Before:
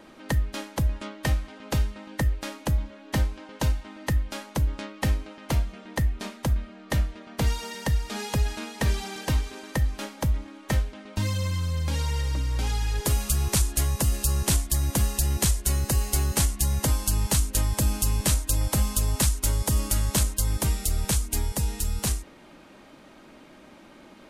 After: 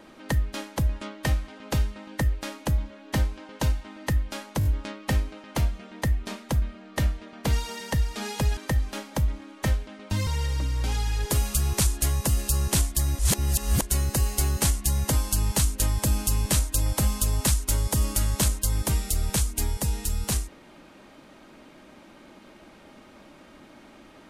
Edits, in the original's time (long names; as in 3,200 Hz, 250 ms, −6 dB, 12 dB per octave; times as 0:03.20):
0:04.59: stutter 0.02 s, 4 plays
0:08.51–0:09.63: remove
0:11.33–0:12.02: remove
0:14.94–0:15.57: reverse